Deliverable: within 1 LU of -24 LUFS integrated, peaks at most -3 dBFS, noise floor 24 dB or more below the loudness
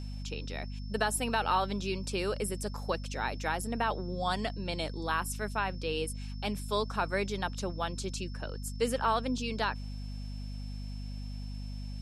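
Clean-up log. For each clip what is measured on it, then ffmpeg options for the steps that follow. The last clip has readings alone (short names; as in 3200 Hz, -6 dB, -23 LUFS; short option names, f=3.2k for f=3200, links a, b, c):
hum 50 Hz; harmonics up to 250 Hz; hum level -36 dBFS; steady tone 5300 Hz; tone level -54 dBFS; loudness -34.0 LUFS; peak -14.0 dBFS; loudness target -24.0 LUFS
-> -af "bandreject=f=50:t=h:w=4,bandreject=f=100:t=h:w=4,bandreject=f=150:t=h:w=4,bandreject=f=200:t=h:w=4,bandreject=f=250:t=h:w=4"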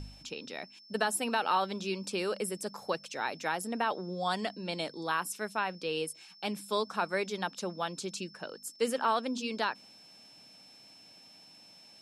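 hum none; steady tone 5300 Hz; tone level -54 dBFS
-> -af "bandreject=f=5.3k:w=30"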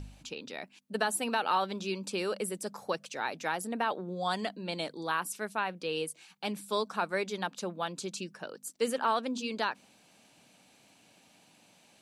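steady tone none; loudness -34.0 LUFS; peak -15.0 dBFS; loudness target -24.0 LUFS
-> -af "volume=10dB"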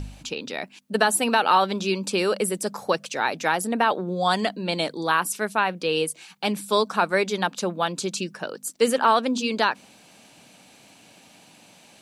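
loudness -24.0 LUFS; peak -5.0 dBFS; noise floor -53 dBFS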